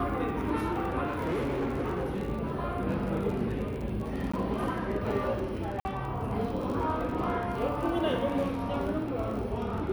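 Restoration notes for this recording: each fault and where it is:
crackle 35/s -36 dBFS
1.06–2.21 clipped -27 dBFS
4.32–4.33 gap 15 ms
5.8–5.85 gap 50 ms

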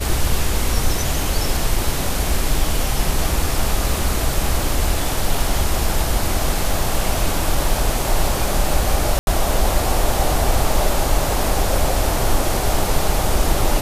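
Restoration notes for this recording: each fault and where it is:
9.19–9.27 gap 81 ms

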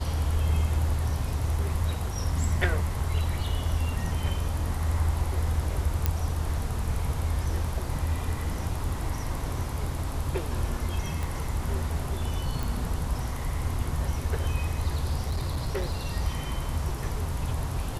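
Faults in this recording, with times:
6.06 pop -10 dBFS
11.23 pop
12.63 pop
15.23–15.93 clipped -24 dBFS

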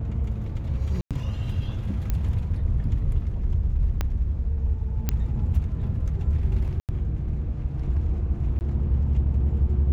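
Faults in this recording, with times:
1.01–1.11 gap 97 ms
2.1 pop -14 dBFS
4.01 pop -12 dBFS
5.09 pop -9 dBFS
6.8–6.89 gap 88 ms
8.59–8.61 gap 19 ms

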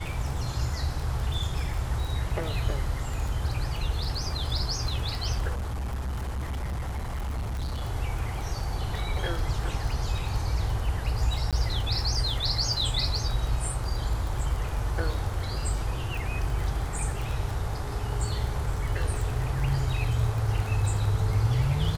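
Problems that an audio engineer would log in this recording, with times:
crackle 20/s -30 dBFS
5.54–7.83 clipped -28 dBFS
11.51–11.53 gap 17 ms

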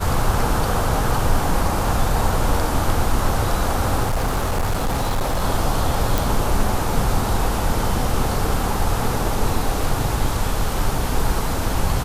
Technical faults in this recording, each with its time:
4.03–5.44 clipped -16.5 dBFS
6.18 pop

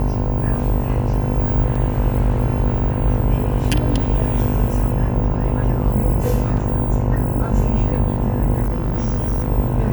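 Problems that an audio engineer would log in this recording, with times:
buzz 50 Hz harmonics 21 -23 dBFS
1.75 gap 4.8 ms
6.57 gap 3.4 ms
8.62–9.47 clipped -16 dBFS

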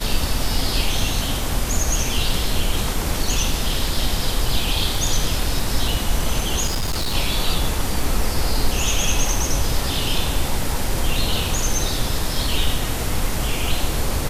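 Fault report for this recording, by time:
6.66–7.15 clipped -18 dBFS

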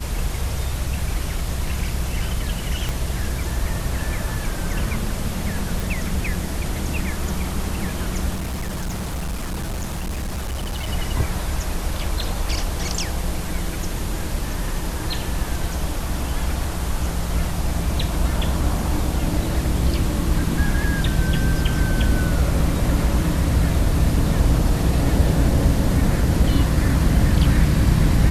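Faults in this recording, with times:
2.89 pop -11 dBFS
5.8 pop
8.34–10.89 clipped -22.5 dBFS

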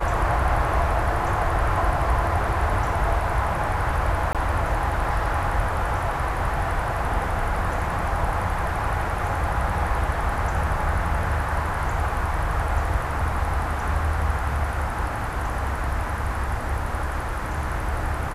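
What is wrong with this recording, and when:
4.33–4.35 gap 17 ms

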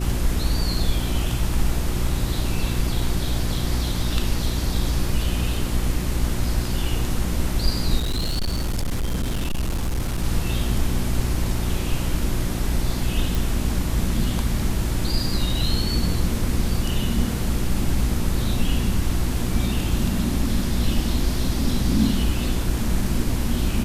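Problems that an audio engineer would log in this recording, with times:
hum 60 Hz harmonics 6 -26 dBFS
7.98–10.23 clipped -20 dBFS
13.35 pop

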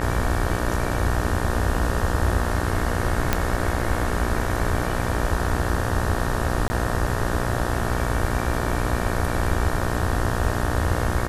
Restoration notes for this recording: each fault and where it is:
buzz 60 Hz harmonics 31 -27 dBFS
3.33 pop -4 dBFS
6.68–6.7 gap 20 ms

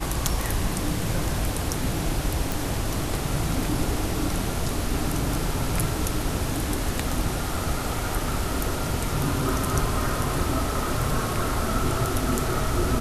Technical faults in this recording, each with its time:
2.52 pop

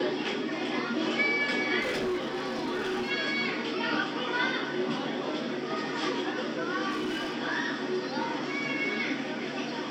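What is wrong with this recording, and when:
1.81–3.11 clipped -27 dBFS
6.9–7.35 clipped -28 dBFS

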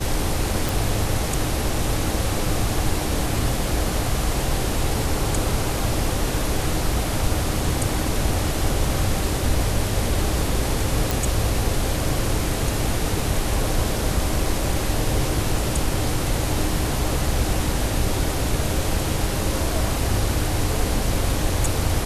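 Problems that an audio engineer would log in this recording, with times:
0.69 pop
11.11 pop

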